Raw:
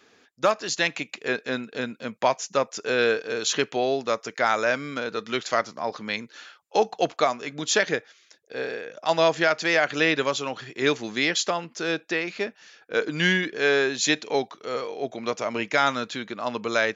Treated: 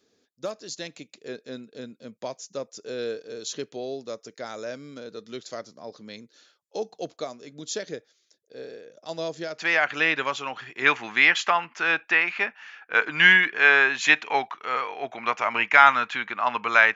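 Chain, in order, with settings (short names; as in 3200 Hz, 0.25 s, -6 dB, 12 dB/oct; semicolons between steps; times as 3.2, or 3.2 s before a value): band shelf 1500 Hz -10 dB 2.3 oct, from 9.58 s +9 dB, from 10.84 s +16 dB; gain -7.5 dB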